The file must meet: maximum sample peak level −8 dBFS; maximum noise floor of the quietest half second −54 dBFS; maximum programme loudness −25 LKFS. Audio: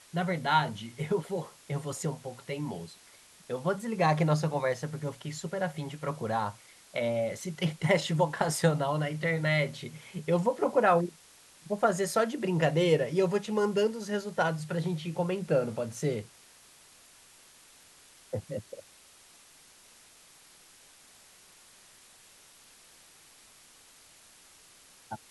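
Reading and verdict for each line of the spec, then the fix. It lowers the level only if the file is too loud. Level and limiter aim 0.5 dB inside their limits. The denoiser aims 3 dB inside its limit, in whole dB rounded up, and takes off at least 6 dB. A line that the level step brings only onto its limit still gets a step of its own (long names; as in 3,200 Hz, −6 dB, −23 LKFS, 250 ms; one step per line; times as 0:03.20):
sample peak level −11.5 dBFS: in spec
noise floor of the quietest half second −57 dBFS: in spec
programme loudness −30.0 LKFS: in spec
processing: no processing needed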